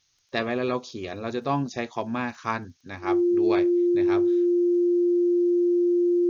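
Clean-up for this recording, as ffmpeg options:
-af "adeclick=t=4,bandreject=f=350:w=30,agate=range=-21dB:threshold=-39dB"

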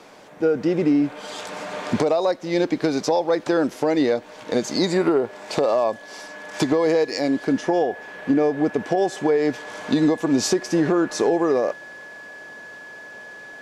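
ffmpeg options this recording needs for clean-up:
-af "bandreject=f=1.7k:w=30"

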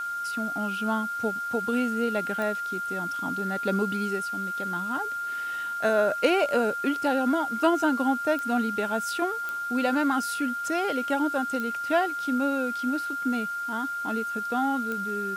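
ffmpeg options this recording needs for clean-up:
-af "adeclick=t=4,bandreject=f=1.4k:w=30,afwtdn=0.0032"

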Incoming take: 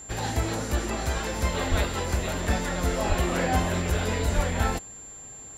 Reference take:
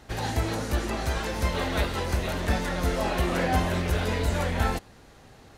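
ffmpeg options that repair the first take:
-filter_complex "[0:a]bandreject=f=7.3k:w=30,asplit=3[a][b][c];[a]afade=t=out:st=1.7:d=0.02[d];[b]highpass=f=140:w=0.5412,highpass=f=140:w=1.3066,afade=t=in:st=1.7:d=0.02,afade=t=out:st=1.82:d=0.02[e];[c]afade=t=in:st=1.82:d=0.02[f];[d][e][f]amix=inputs=3:normalize=0,asplit=3[g][h][i];[g]afade=t=out:st=3.08:d=0.02[j];[h]highpass=f=140:w=0.5412,highpass=f=140:w=1.3066,afade=t=in:st=3.08:d=0.02,afade=t=out:st=3.2:d=0.02[k];[i]afade=t=in:st=3.2:d=0.02[l];[j][k][l]amix=inputs=3:normalize=0,asplit=3[m][n][o];[m]afade=t=out:st=4.35:d=0.02[p];[n]highpass=f=140:w=0.5412,highpass=f=140:w=1.3066,afade=t=in:st=4.35:d=0.02,afade=t=out:st=4.47:d=0.02[q];[o]afade=t=in:st=4.47:d=0.02[r];[p][q][r]amix=inputs=3:normalize=0"

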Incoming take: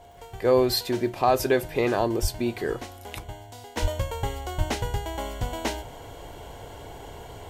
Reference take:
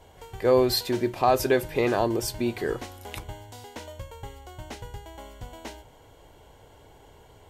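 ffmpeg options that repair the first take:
-filter_complex "[0:a]adeclick=t=4,bandreject=f=700:w=30,asplit=3[a][b][c];[a]afade=t=out:st=2.21:d=0.02[d];[b]highpass=f=140:w=0.5412,highpass=f=140:w=1.3066,afade=t=in:st=2.21:d=0.02,afade=t=out:st=2.33:d=0.02[e];[c]afade=t=in:st=2.33:d=0.02[f];[d][e][f]amix=inputs=3:normalize=0,asplit=3[g][h][i];[g]afade=t=out:st=3.81:d=0.02[j];[h]highpass=f=140:w=0.5412,highpass=f=140:w=1.3066,afade=t=in:st=3.81:d=0.02,afade=t=out:st=3.93:d=0.02[k];[i]afade=t=in:st=3.93:d=0.02[l];[j][k][l]amix=inputs=3:normalize=0,asplit=3[m][n][o];[m]afade=t=out:st=4.57:d=0.02[p];[n]highpass=f=140:w=0.5412,highpass=f=140:w=1.3066,afade=t=in:st=4.57:d=0.02,afade=t=out:st=4.69:d=0.02[q];[o]afade=t=in:st=4.69:d=0.02[r];[p][q][r]amix=inputs=3:normalize=0,asetnsamples=n=441:p=0,asendcmd='3.77 volume volume -11dB',volume=0dB"

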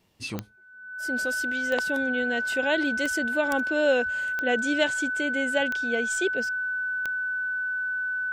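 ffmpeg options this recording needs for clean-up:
-af "adeclick=t=4,bandreject=f=1.5k:w=30"

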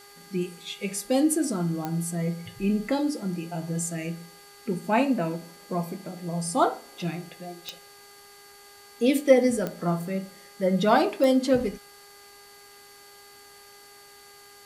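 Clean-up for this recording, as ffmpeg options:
-af "adeclick=t=4,bandreject=f=405:t=h:w=4,bandreject=f=810:t=h:w=4,bandreject=f=1.215k:t=h:w=4,bandreject=f=1.62k:t=h:w=4,bandreject=f=2.025k:t=h:w=4,bandreject=f=4.5k:w=30,afwtdn=0.0025"

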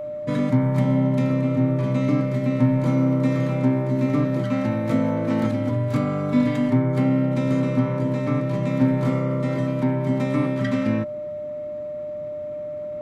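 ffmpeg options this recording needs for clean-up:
-af "bandreject=f=600:w=30"

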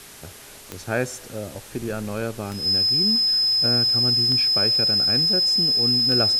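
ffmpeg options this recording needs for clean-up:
-af "adeclick=t=4,bandreject=f=406.5:t=h:w=4,bandreject=f=813:t=h:w=4,bandreject=f=1.2195k:t=h:w=4,bandreject=f=1.626k:t=h:w=4,bandreject=f=2.0325k:t=h:w=4,bandreject=f=5.1k:w=30,afwtdn=0.0079"

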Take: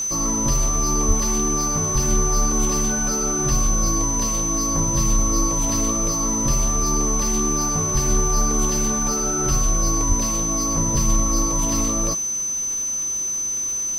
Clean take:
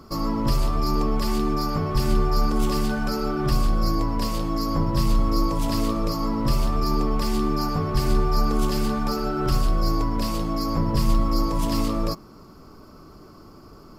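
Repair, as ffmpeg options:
-filter_complex "[0:a]adeclick=t=4,bandreject=f=6.1k:w=30,asplit=3[a][b][c];[a]afade=t=out:st=1.07:d=0.02[d];[b]highpass=f=140:w=0.5412,highpass=f=140:w=1.3066,afade=t=in:st=1.07:d=0.02,afade=t=out:st=1.19:d=0.02[e];[c]afade=t=in:st=1.19:d=0.02[f];[d][e][f]amix=inputs=3:normalize=0,asplit=3[g][h][i];[g]afade=t=out:st=10.08:d=0.02[j];[h]highpass=f=140:w=0.5412,highpass=f=140:w=1.3066,afade=t=in:st=10.08:d=0.02,afade=t=out:st=10.2:d=0.02[k];[i]afade=t=in:st=10.2:d=0.02[l];[j][k][l]amix=inputs=3:normalize=0,afwtdn=0.0071"

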